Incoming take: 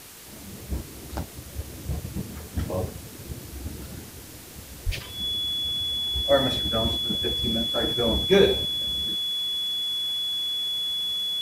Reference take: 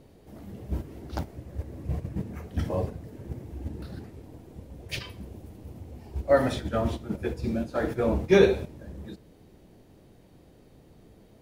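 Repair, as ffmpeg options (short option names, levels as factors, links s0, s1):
-filter_complex "[0:a]bandreject=f=3400:w=30,asplit=3[s0][s1][s2];[s0]afade=t=out:st=4.85:d=0.02[s3];[s1]highpass=f=140:w=0.5412,highpass=f=140:w=1.3066,afade=t=in:st=4.85:d=0.02,afade=t=out:st=4.97:d=0.02[s4];[s2]afade=t=in:st=4.97:d=0.02[s5];[s3][s4][s5]amix=inputs=3:normalize=0,afwtdn=0.0063"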